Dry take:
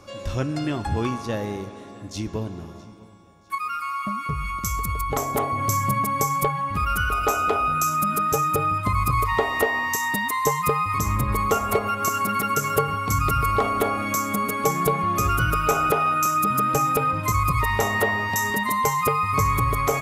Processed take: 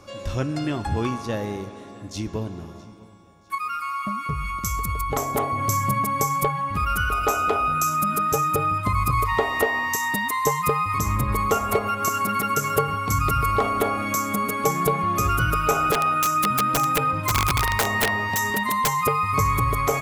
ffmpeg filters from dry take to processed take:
-filter_complex "[0:a]asplit=3[s0][s1][s2];[s0]afade=t=out:st=15.92:d=0.02[s3];[s1]aeval=exprs='(mod(4.73*val(0)+1,2)-1)/4.73':c=same,afade=t=in:st=15.92:d=0.02,afade=t=out:st=18.95:d=0.02[s4];[s2]afade=t=in:st=18.95:d=0.02[s5];[s3][s4][s5]amix=inputs=3:normalize=0"

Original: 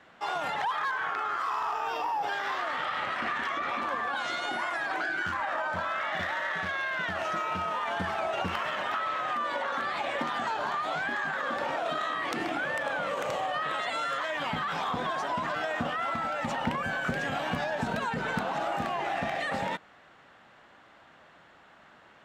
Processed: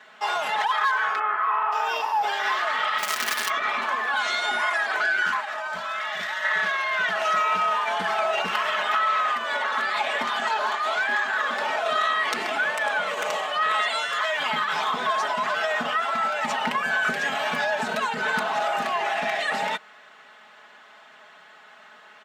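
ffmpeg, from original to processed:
-filter_complex "[0:a]asplit=3[s0][s1][s2];[s0]afade=t=out:st=1.18:d=0.02[s3];[s1]lowpass=f=2400:w=0.5412,lowpass=f=2400:w=1.3066,afade=t=in:st=1.18:d=0.02,afade=t=out:st=1.71:d=0.02[s4];[s2]afade=t=in:st=1.71:d=0.02[s5];[s3][s4][s5]amix=inputs=3:normalize=0,asettb=1/sr,asplit=3[s6][s7][s8];[s6]atrim=end=2.984[s9];[s7]atrim=start=2.98:end=3.5,asetpts=PTS-STARTPTS,afade=t=in:d=0.004:c=qsin,afade=t=out:st=0.516:d=0.004:c=qsin,acrusher=bits=5:dc=4:mix=0:aa=0.000001[s10];[s8]atrim=start=3.496[s11];[s9][s10]acrossfade=d=0.004:c1=hsin:c2=qsin[s12];[s12][s11]acrossfade=d=0.004:c1=qsin:c2=hsin,asettb=1/sr,asplit=3[s13][s14][s15];[s13]atrim=end=5.404[s16];[s14]atrim=start=5.4:end=6.44,asetpts=PTS-STARTPTS,afade=t=in:d=0.004:c=qsin,afade=t=out:st=1.036:d=0.004:c=qsin,acrossover=split=180|3000[s17][s18][s19];[s18]acompressor=threshold=0.0178:ratio=6:attack=3.2:release=140:knee=2.83:detection=peak[s20];[s17][s20][s19]amix=inputs=3:normalize=0[s21];[s15]atrim=start=6.436[s22];[s16][s21]acrossfade=d=0.004:c1=hsin:c2=qsin[s23];[s23][s22]acrossfade=d=0.004:c1=qsin:c2=hsin,asettb=1/sr,asplit=3[s24][s25][s26];[s24]atrim=end=10.604[s27];[s25]atrim=start=10.6:end=11.48,asetpts=PTS-STARTPTS,afade=t=in:d=0.004:c=qsin,afade=t=out:st=0.876:d=0.004:c=qsin,highpass=f=210:w=0.5412,highpass=f=210:w=1.3066[s28];[s26]atrim=start=11.476[s29];[s27][s28]acrossfade=d=0.004:c1=hsin:c2=qsin[s30];[s30][s29]acrossfade=d=0.004:c1=qsin:c2=hsin,asplit=3[s31][s32][s33];[s31]afade=t=out:st=13.83:d=0.02[s34];[s32]asubboost=boost=3:cutoff=110,afade=t=in:st=13.83:d=0.02,afade=t=out:st=14.38:d=0.02[s35];[s33]afade=t=in:st=14.38:d=0.02[s36];[s34][s35][s36]amix=inputs=3:normalize=0,highpass=f=930:p=1,aecho=1:1:4.7:0.78,volume=2.24"

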